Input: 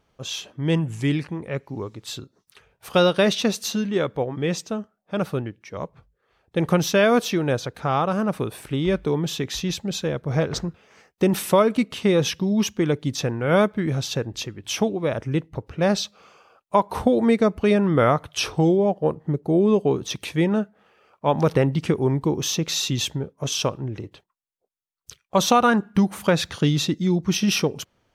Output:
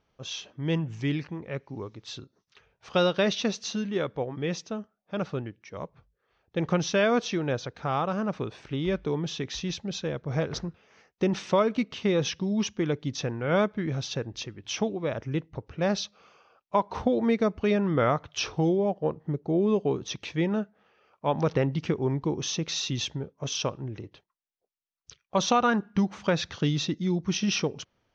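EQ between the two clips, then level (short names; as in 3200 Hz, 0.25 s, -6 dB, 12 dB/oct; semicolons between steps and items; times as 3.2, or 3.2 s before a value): elliptic low-pass 6100 Hz, stop band 60 dB; -5.0 dB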